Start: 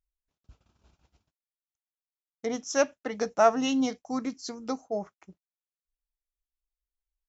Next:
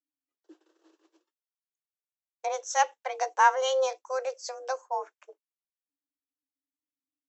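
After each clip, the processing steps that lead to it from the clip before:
noise reduction from a noise print of the clip's start 14 dB
frequency shifter +260 Hz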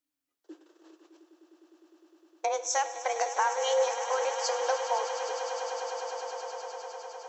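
downward compressor, threshold −32 dBFS, peak gain reduction 16 dB
echo that builds up and dies away 102 ms, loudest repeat 8, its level −13.5 dB
on a send at −12.5 dB: convolution reverb RT60 1.1 s, pre-delay 17 ms
on the sum: level +6 dB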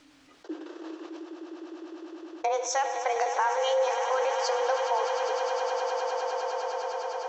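high-frequency loss of the air 130 metres
envelope flattener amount 50%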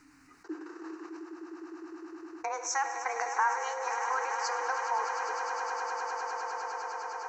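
phaser with its sweep stopped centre 1,400 Hz, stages 4
level +2 dB

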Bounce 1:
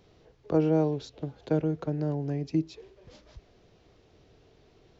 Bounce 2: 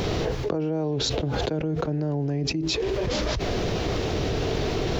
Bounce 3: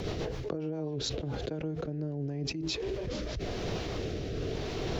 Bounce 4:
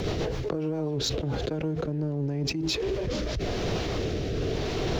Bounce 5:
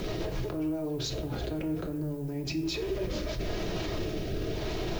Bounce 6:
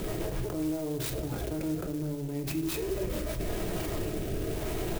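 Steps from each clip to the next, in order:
envelope flattener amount 100%; level −5.5 dB
rotating-speaker cabinet horn 7.5 Hz, later 0.9 Hz, at 0:00.77; level −7 dB
leveller curve on the samples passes 1; level +2.5 dB
brickwall limiter −28 dBFS, peak gain reduction 10 dB; background noise violet −60 dBFS; convolution reverb RT60 0.65 s, pre-delay 3 ms, DRR 2.5 dB
single-tap delay 232 ms −16.5 dB; converter with an unsteady clock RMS 0.058 ms

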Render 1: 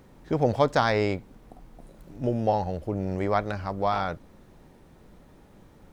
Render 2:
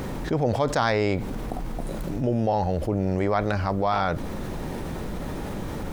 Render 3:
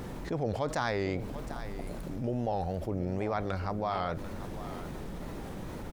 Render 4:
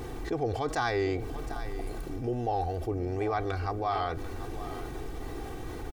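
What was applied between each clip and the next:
envelope flattener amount 70%; level −3.5 dB
tape wow and flutter 120 cents; single-tap delay 741 ms −13 dB; level −8.5 dB
comb filter 2.6 ms, depth 79%

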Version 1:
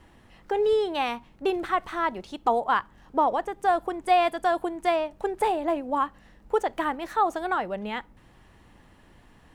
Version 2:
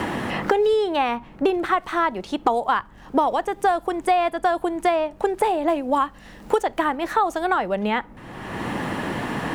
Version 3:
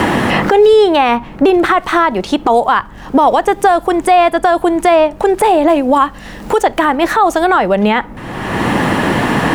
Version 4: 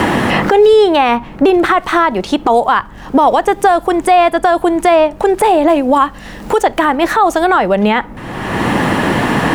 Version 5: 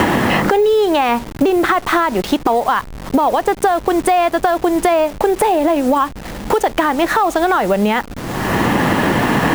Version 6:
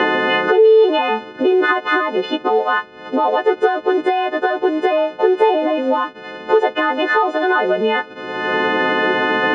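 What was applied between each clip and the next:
multiband upward and downward compressor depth 100%; level +4 dB
boost into a limiter +14.5 dB; level −1 dB
no processing that can be heard
hold until the input has moved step −25 dBFS; downward compressor, threshold −13 dBFS, peak gain reduction 8 dB; level +2 dB
every partial snapped to a pitch grid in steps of 3 semitones; loudspeaker in its box 350–2,800 Hz, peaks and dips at 420 Hz +7 dB, 710 Hz −5 dB, 1,100 Hz −7 dB, 2,200 Hz −9 dB

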